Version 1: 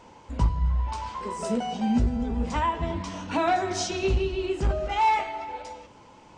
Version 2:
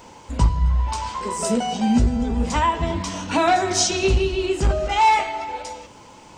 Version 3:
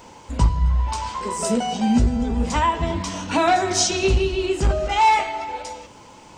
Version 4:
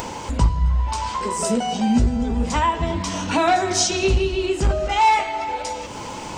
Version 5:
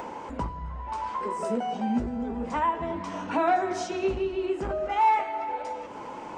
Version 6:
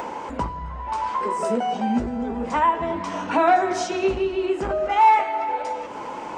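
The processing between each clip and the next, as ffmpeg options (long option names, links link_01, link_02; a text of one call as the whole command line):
ffmpeg -i in.wav -af "aemphasis=mode=production:type=50kf,volume=5.5dB" out.wav
ffmpeg -i in.wav -af anull out.wav
ffmpeg -i in.wav -af "acompressor=mode=upward:threshold=-19dB:ratio=2.5" out.wav
ffmpeg -i in.wav -filter_complex "[0:a]acrossover=split=210 2100:gain=0.2 1 0.141[link_01][link_02][link_03];[link_01][link_02][link_03]amix=inputs=3:normalize=0,volume=-5dB" out.wav
ffmpeg -i in.wav -af "lowshelf=frequency=300:gain=-5,volume=7dB" out.wav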